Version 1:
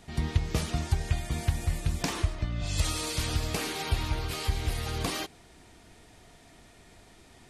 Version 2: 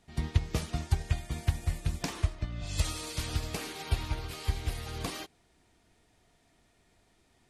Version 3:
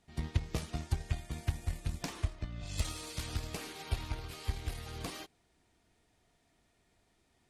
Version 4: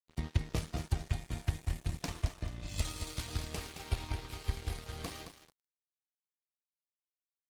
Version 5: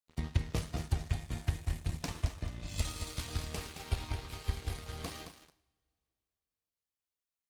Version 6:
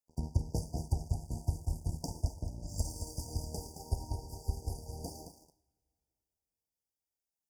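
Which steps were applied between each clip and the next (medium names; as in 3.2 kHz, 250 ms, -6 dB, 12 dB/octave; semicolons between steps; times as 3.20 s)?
upward expansion 1.5:1, over -45 dBFS
Chebyshev shaper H 6 -23 dB, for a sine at -12.5 dBFS; trim -5 dB
feedback delay 219 ms, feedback 34%, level -7 dB; crossover distortion -49.5 dBFS; trim +1 dB
two-slope reverb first 0.65 s, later 3 s, from -27 dB, DRR 12 dB
rattle on loud lows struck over -33 dBFS, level -32 dBFS; brick-wall FIR band-stop 980–4600 Hz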